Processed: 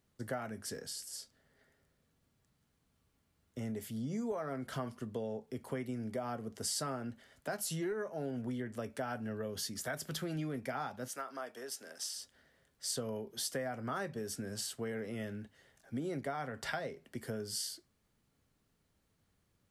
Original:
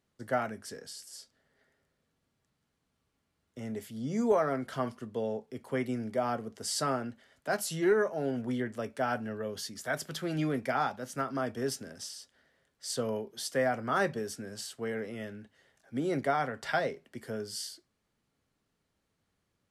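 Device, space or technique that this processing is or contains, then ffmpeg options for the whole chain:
ASMR close-microphone chain: -filter_complex "[0:a]lowshelf=f=160:g=7,acompressor=threshold=0.0158:ratio=5,highshelf=f=9900:g=8,asettb=1/sr,asplit=3[s0][s1][s2];[s0]atrim=end=11.084[s3];[s1]atrim=start=11.08:end=12.16,asetpts=PTS-STARTPTS,afade=t=in:d=0.004:c=qsin,afade=t=out:st=1.076:d=0.004:c=qsin,highpass=550[s4];[s2]atrim=start=12.156[s5];[s3][s4]acrossfade=d=0.004:c1=hsin:c2=qsin[s6];[s6][s5]acrossfade=d=0.004:c1=qsin:c2=hsin"

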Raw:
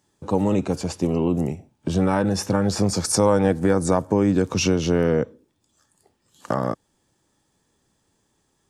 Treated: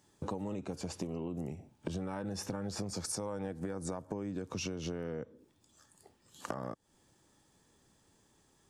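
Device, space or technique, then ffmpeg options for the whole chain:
serial compression, leveller first: -af "acompressor=threshold=0.0562:ratio=2,acompressor=threshold=0.0158:ratio=6"

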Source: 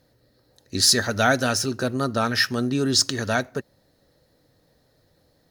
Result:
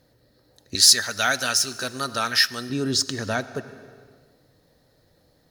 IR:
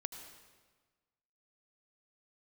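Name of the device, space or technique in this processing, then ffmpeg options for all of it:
ducked reverb: -filter_complex "[0:a]asettb=1/sr,asplit=3[s0][s1][s2];[s0]atrim=end=0.754[s3];[s1]atrim=start=0.75:end=2.7,asetpts=PTS-STARTPTS,afade=t=in:d=0.004:c=qsin,afade=t=out:st=1.946:d=0.004:c=qsin,tiltshelf=f=970:g=-9[s4];[s2]atrim=start=2.696[s5];[s3][s4]acrossfade=d=0.004:c1=hsin:c2=qsin[s6];[s6][s5]acrossfade=d=0.004:c1=qsin:c2=hsin,asplit=3[s7][s8][s9];[1:a]atrim=start_sample=2205[s10];[s8][s10]afir=irnorm=-1:irlink=0[s11];[s9]apad=whole_len=242671[s12];[s11][s12]sidechaincompress=threshold=0.0562:ratio=8:attack=16:release=750,volume=1.68[s13];[s7][s13]amix=inputs=2:normalize=0,volume=0.501"

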